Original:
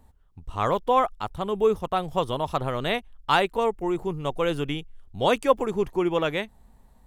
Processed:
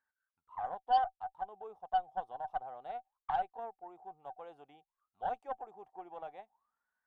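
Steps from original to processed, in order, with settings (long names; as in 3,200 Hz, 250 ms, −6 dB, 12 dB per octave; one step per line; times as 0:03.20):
envelope filter 760–1,600 Hz, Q 22, down, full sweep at −26.5 dBFS
harmonic generator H 6 −26 dB, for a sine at −19 dBFS
high-shelf EQ 4,100 Hz +10.5 dB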